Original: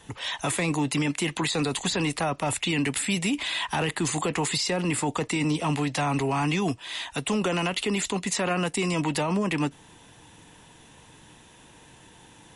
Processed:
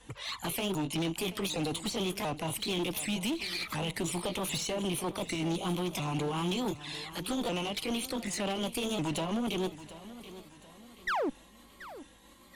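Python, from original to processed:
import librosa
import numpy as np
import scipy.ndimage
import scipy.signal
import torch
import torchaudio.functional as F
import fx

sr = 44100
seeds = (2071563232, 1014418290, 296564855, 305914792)

y = fx.pitch_ramps(x, sr, semitones=4.5, every_ms=749)
y = fx.add_hum(y, sr, base_hz=50, snr_db=33)
y = fx.env_flanger(y, sr, rest_ms=4.4, full_db=-25.0)
y = fx.spec_paint(y, sr, seeds[0], shape='fall', start_s=11.07, length_s=0.23, low_hz=240.0, high_hz=2100.0, level_db=-25.0)
y = fx.clip_asym(y, sr, top_db=-30.5, bottom_db=-23.5)
y = fx.echo_feedback(y, sr, ms=731, feedback_pct=40, wet_db=-15.5)
y = y * librosa.db_to_amplitude(-2.0)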